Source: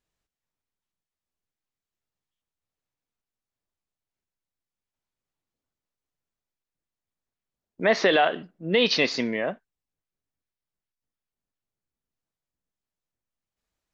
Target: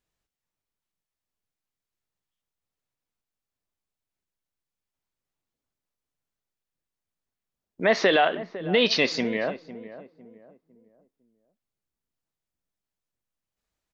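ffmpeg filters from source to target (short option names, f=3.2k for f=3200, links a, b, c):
-filter_complex "[0:a]asplit=2[a][b];[b]adelay=504,lowpass=f=960:p=1,volume=-13.5dB,asplit=2[c][d];[d]adelay=504,lowpass=f=960:p=1,volume=0.37,asplit=2[e][f];[f]adelay=504,lowpass=f=960:p=1,volume=0.37,asplit=2[g][h];[h]adelay=504,lowpass=f=960:p=1,volume=0.37[i];[a][c][e][g][i]amix=inputs=5:normalize=0"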